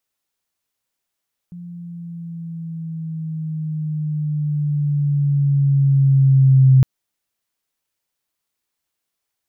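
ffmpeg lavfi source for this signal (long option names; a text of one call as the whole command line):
ffmpeg -f lavfi -i "aevalsrc='pow(10,(-7+24.5*(t/5.31-1))/20)*sin(2*PI*175*5.31/(-5*log(2)/12)*(exp(-5*log(2)/12*t/5.31)-1))':duration=5.31:sample_rate=44100" out.wav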